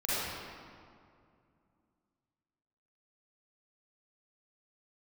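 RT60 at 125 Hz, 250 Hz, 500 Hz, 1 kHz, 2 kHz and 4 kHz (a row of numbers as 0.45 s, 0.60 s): 3.1 s, 3.2 s, 2.4 s, 2.3 s, 1.8 s, 1.4 s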